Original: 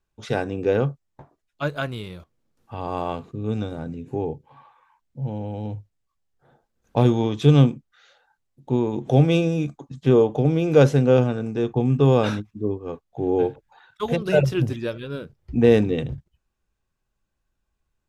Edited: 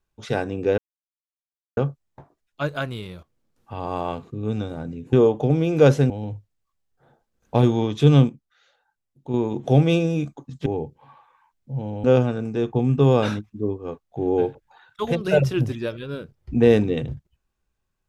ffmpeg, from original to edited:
-filter_complex "[0:a]asplit=8[a][b][c][d][e][f][g][h];[a]atrim=end=0.78,asetpts=PTS-STARTPTS,afade=t=out:st=0.776:d=0.004:c=hsin,apad=pad_dur=0.99[i];[b]atrim=start=0.78:end=4.142,asetpts=PTS-STARTPTS,afade=t=in:d=0.004:c=hsin[j];[c]atrim=start=10.078:end=11.052[k];[d]atrim=start=5.518:end=7.712[l];[e]atrim=start=7.708:end=8.762,asetpts=PTS-STARTPTS,volume=-6dB[m];[f]atrim=start=8.758:end=10.082[n];[g]atrim=start=4.138:end=5.522[o];[h]atrim=start=11.048[p];[i][j]concat=n=2:v=0:a=1[q];[q][k]acrossfade=d=0.004:c1=hsin:c2=hsin[r];[r][l]acrossfade=d=0.004:c1=hsin:c2=hsin[s];[s][m]acrossfade=d=0.004:c1=hsin:c2=hsin[t];[t][n]acrossfade=d=0.004:c1=hsin:c2=hsin[u];[u][o]acrossfade=d=0.004:c1=hsin:c2=hsin[v];[v][p]acrossfade=d=0.004:c1=hsin:c2=hsin"

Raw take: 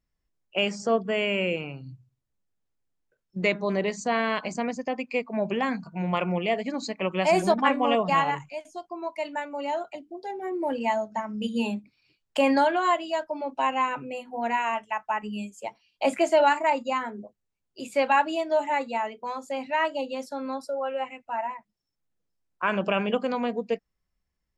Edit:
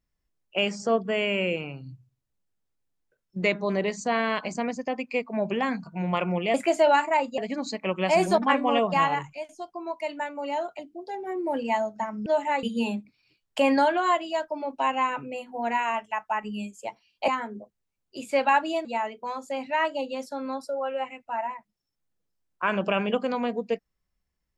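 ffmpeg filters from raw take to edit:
-filter_complex "[0:a]asplit=7[a][b][c][d][e][f][g];[a]atrim=end=6.542[h];[b]atrim=start=16.068:end=16.912[i];[c]atrim=start=6.538:end=11.422[j];[d]atrim=start=18.478:end=18.852[k];[e]atrim=start=11.418:end=16.072[l];[f]atrim=start=16.908:end=18.482[m];[g]atrim=start=18.848[n];[h][i]acrossfade=d=0.004:c1=hsin:c2=hsin[o];[o][j]acrossfade=d=0.004:c1=hsin:c2=hsin[p];[p][k]acrossfade=d=0.004:c1=hsin:c2=hsin[q];[q][l]acrossfade=d=0.004:c1=hsin:c2=hsin[r];[r][m]acrossfade=d=0.004:c1=hsin:c2=hsin[s];[s][n]acrossfade=d=0.004:c1=hsin:c2=hsin"

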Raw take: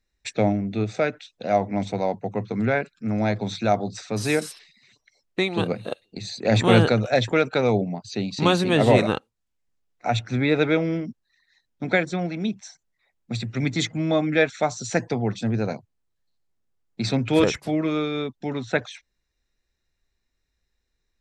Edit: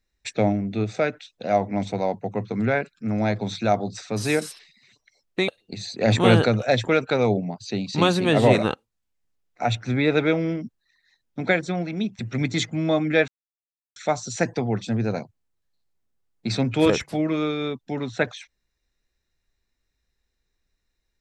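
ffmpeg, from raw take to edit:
-filter_complex "[0:a]asplit=4[a][b][c][d];[a]atrim=end=5.482[e];[b]atrim=start=5.918:end=12.632[f];[c]atrim=start=13.408:end=14.5,asetpts=PTS-STARTPTS,afade=t=out:st=1.088:d=0.004:c=hsin,apad=pad_dur=0.68[g];[d]atrim=start=14.5,asetpts=PTS-STARTPTS,afade=t=in:d=0.004:c=hsin[h];[e][f]acrossfade=d=0.004:c1=hsin:c2=hsin[i];[g][h]concat=n=2:v=0:a=1[j];[i][j]acrossfade=d=0.004:c1=hsin:c2=hsin"

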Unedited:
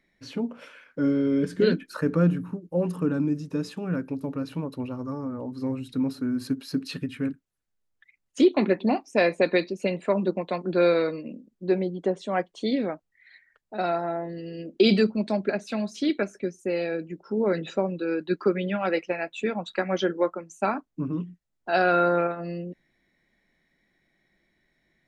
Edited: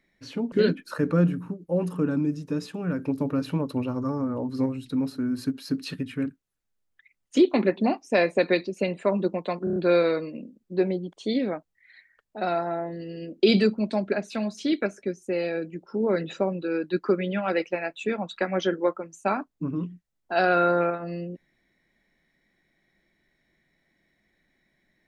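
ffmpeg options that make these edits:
-filter_complex "[0:a]asplit=9[a][b][c][d][e][f][g][h][i];[a]atrim=end=0.522[j];[b]atrim=start=1.548:end=4.022[k];[c]atrim=start=4.018:end=5.692,asetpts=PTS-STARTPTS,volume=4.5dB[l];[d]atrim=start=5.688:end=10.702[m];[e]atrim=start=10.668:end=10.702[n];[f]atrim=start=10.668:end=10.702[o];[g]atrim=start=10.668:end=10.702[p];[h]atrim=start=10.668:end=12.042[q];[i]atrim=start=12.498[r];[j][k]acrossfade=d=0.004:c1=hsin:c2=hsin[s];[s][l]acrossfade=d=0.004:c1=hsin:c2=hsin[t];[t][m]acrossfade=d=0.004:c1=hsin:c2=hsin[u];[u][n]acrossfade=d=0.004:c1=hsin:c2=hsin[v];[v][o]acrossfade=d=0.004:c1=hsin:c2=hsin[w];[w][p]acrossfade=d=0.004:c1=hsin:c2=hsin[x];[x][q]acrossfade=d=0.004:c1=hsin:c2=hsin[y];[y][r]acrossfade=d=0.004:c1=hsin:c2=hsin"

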